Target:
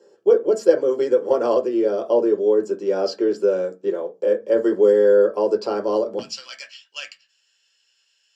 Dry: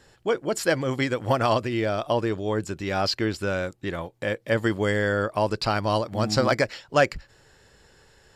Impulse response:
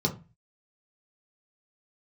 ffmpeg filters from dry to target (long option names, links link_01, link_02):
-filter_complex "[0:a]asetnsamples=nb_out_samples=441:pad=0,asendcmd='6.19 highpass f 2800',highpass=frequency=420:width_type=q:width=4.9[link_01];[1:a]atrim=start_sample=2205,asetrate=57330,aresample=44100[link_02];[link_01][link_02]afir=irnorm=-1:irlink=0,volume=-14dB"